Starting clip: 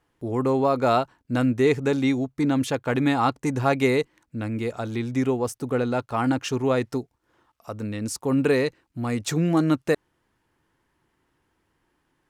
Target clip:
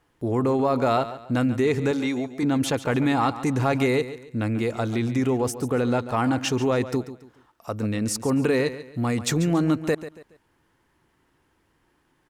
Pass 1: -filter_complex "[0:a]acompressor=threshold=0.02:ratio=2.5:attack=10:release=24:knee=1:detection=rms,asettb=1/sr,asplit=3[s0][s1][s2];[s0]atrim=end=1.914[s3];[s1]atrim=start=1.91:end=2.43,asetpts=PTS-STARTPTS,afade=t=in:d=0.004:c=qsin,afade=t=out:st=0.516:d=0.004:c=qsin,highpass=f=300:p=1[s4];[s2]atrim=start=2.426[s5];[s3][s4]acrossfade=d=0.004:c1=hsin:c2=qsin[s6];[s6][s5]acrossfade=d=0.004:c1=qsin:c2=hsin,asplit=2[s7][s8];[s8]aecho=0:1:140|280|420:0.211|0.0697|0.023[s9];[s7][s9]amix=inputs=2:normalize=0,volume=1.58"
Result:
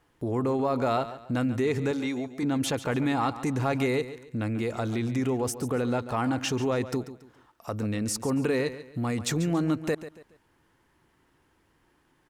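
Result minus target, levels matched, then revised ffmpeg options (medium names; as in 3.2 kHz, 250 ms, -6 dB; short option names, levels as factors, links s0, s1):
compression: peak gain reduction +4.5 dB
-filter_complex "[0:a]acompressor=threshold=0.0473:ratio=2.5:attack=10:release=24:knee=1:detection=rms,asettb=1/sr,asplit=3[s0][s1][s2];[s0]atrim=end=1.914[s3];[s1]atrim=start=1.91:end=2.43,asetpts=PTS-STARTPTS,afade=t=in:d=0.004:c=qsin,afade=t=out:st=0.516:d=0.004:c=qsin,highpass=f=300:p=1[s4];[s2]atrim=start=2.426[s5];[s3][s4]acrossfade=d=0.004:c1=hsin:c2=qsin[s6];[s6][s5]acrossfade=d=0.004:c1=qsin:c2=hsin,asplit=2[s7][s8];[s8]aecho=0:1:140|280|420:0.211|0.0697|0.023[s9];[s7][s9]amix=inputs=2:normalize=0,volume=1.58"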